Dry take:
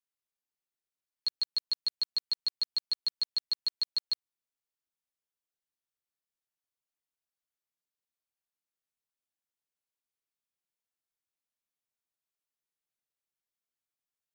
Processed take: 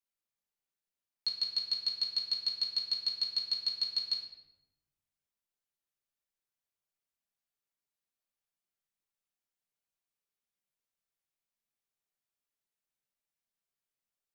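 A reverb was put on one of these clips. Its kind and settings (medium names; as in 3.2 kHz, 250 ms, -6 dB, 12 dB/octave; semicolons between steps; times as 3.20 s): simulated room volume 370 m³, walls mixed, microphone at 1.2 m; trim -3.5 dB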